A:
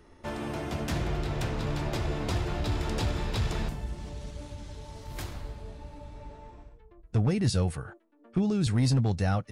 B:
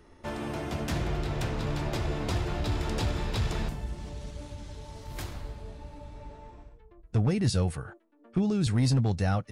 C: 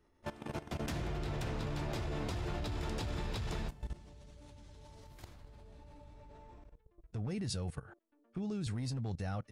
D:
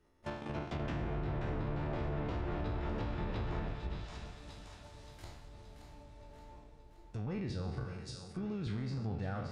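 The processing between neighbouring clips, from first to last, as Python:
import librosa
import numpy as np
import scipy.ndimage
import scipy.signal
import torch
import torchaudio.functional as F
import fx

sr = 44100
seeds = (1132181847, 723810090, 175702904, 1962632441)

y1 = x
y2 = fx.level_steps(y1, sr, step_db=17)
y2 = y2 * 10.0 ** (-3.0 / 20.0)
y3 = fx.spec_trails(y2, sr, decay_s=0.76)
y3 = fx.echo_split(y3, sr, split_hz=580.0, low_ms=312, high_ms=574, feedback_pct=52, wet_db=-8.5)
y3 = fx.env_lowpass_down(y3, sr, base_hz=1800.0, full_db=-30.5)
y3 = y3 * 10.0 ** (-1.5 / 20.0)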